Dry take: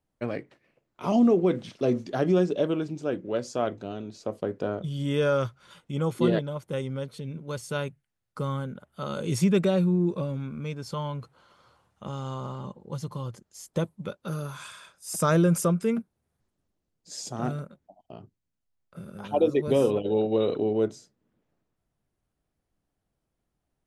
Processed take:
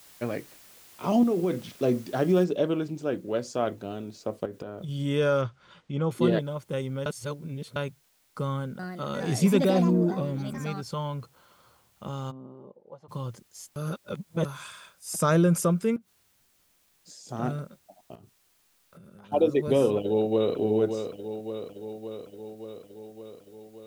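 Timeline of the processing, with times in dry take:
1.23–1.67 compressor, threshold -21 dBFS
2.44 noise floor step -53 dB -67 dB
4.45–4.89 compressor 12:1, threshold -32 dBFS
5.41–6.11 air absorption 130 m
7.06–7.76 reverse
8.44–11.14 echoes that change speed 0.351 s, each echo +5 st, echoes 2, each echo -6 dB
12.3–13.08 band-pass 220 Hz -> 840 Hz, Q 2.9
13.76–14.45 reverse
15.96–17.29 compressor 16:1, threshold -44 dBFS
18.15–19.32 compressor, threshold -48 dBFS
19.98–20.56 echo throw 0.57 s, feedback 70%, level -7.5 dB

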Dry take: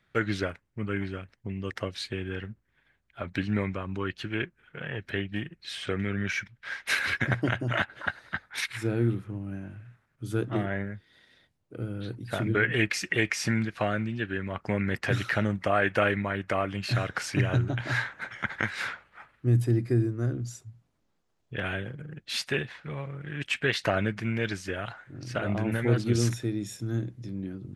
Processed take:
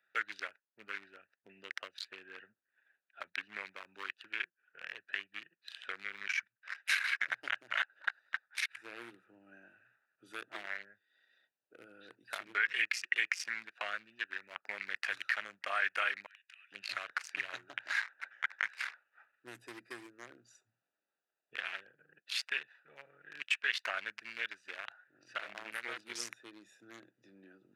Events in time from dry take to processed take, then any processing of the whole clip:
16.26–16.72 inverse Chebyshev high-pass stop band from 390 Hz, stop band 80 dB
whole clip: Wiener smoothing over 41 samples; Chebyshev high-pass 1700 Hz, order 2; three-band squash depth 40%

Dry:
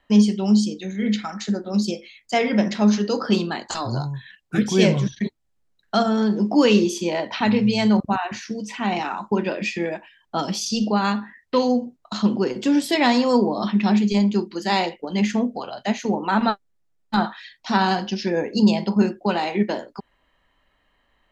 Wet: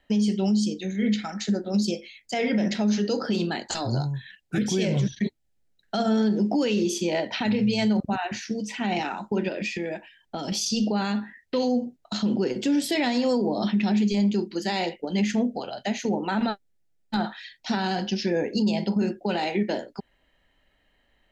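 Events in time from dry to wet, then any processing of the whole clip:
9.48–10.52 compressor, threshold -25 dBFS
whole clip: bell 1100 Hz -12 dB 0.45 oct; limiter -16 dBFS

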